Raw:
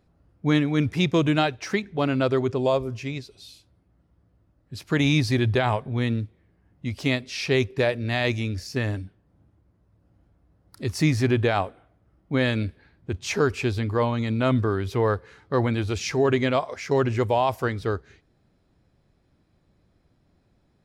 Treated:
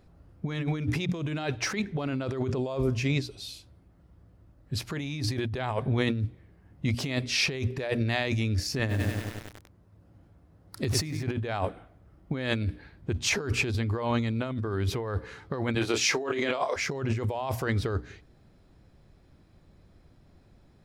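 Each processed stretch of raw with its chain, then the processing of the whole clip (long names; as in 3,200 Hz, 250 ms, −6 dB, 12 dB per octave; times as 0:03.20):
0:08.79–0:11.23: high-pass filter 66 Hz + feedback echo at a low word length 98 ms, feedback 80%, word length 7 bits, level −7.5 dB
0:15.75–0:16.76: high-pass filter 330 Hz + double-tracking delay 26 ms −8 dB
whole clip: low-shelf EQ 79 Hz +6 dB; mains-hum notches 60/120/180/240/300 Hz; compressor whose output falls as the input rises −29 dBFS, ratio −1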